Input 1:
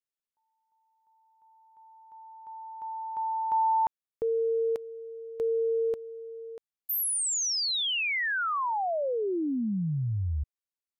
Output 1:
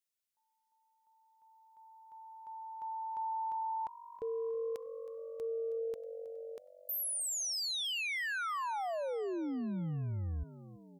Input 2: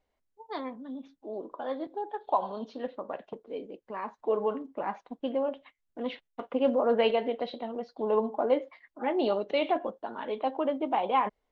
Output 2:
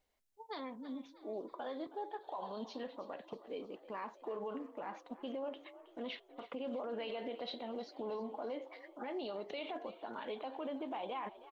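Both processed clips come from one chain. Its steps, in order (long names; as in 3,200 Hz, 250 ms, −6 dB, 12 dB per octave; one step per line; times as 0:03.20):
high-shelf EQ 2,600 Hz +10 dB
downward compressor 1.5 to 1, threshold −32 dBFS
brickwall limiter −29 dBFS
on a send: echo with shifted repeats 319 ms, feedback 59%, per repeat +47 Hz, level −16.5 dB
on the sum: level −4.5 dB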